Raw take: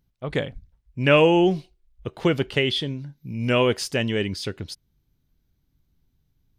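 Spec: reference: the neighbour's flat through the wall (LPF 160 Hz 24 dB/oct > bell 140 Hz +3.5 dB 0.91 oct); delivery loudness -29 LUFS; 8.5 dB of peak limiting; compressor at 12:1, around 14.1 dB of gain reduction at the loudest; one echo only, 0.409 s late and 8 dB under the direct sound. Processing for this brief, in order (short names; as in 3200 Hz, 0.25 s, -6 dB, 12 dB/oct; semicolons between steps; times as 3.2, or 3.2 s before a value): compressor 12:1, threshold -26 dBFS; limiter -24 dBFS; LPF 160 Hz 24 dB/oct; bell 140 Hz +3.5 dB 0.91 oct; echo 0.409 s -8 dB; gain +10 dB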